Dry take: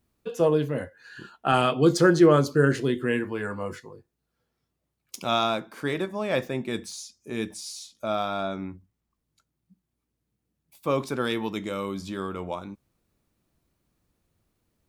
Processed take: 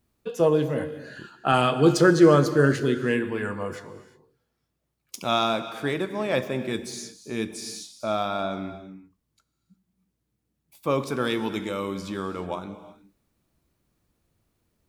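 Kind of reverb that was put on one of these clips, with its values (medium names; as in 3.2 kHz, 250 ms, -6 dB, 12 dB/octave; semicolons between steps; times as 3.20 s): gated-style reverb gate 390 ms flat, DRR 11 dB; trim +1 dB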